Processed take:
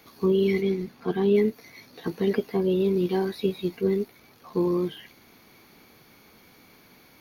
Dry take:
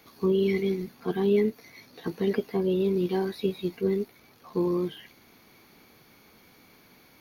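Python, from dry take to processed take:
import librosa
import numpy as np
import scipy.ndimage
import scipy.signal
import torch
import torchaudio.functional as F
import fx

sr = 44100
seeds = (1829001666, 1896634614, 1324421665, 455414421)

y = fx.high_shelf(x, sr, hz=7600.0, db=-8.5, at=(0.61, 1.35))
y = y * librosa.db_to_amplitude(2.0)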